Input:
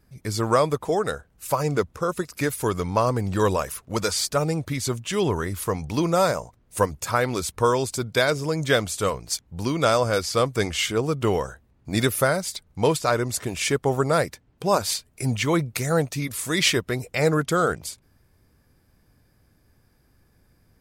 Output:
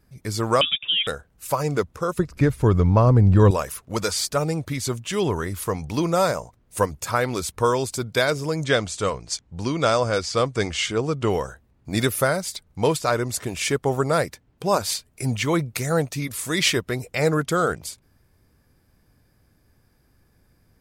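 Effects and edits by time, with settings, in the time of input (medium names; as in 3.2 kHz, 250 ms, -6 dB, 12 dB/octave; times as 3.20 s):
0.61–1.07 s: frequency inversion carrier 3.6 kHz
2.19–3.51 s: RIAA curve playback
8.64–11.30 s: low-pass 8.3 kHz 24 dB/octave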